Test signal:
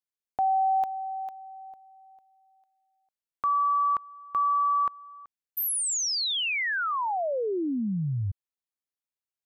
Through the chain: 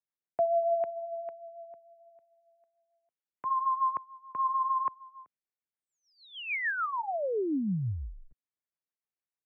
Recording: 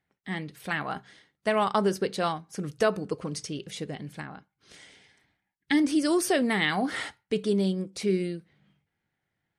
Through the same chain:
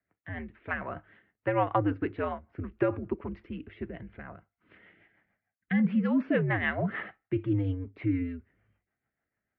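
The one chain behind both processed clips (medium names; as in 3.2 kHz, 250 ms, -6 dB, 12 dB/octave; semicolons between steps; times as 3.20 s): mistuned SSB -92 Hz 190–2500 Hz; rotary cabinet horn 6.7 Hz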